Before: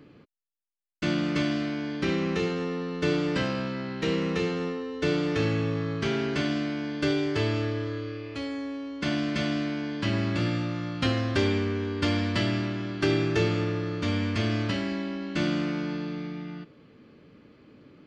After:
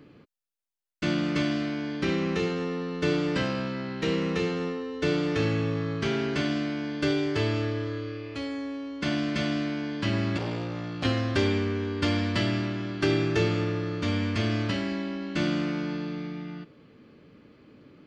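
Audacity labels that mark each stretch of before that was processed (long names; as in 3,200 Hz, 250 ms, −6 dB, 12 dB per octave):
10.370000	11.050000	saturating transformer saturates under 990 Hz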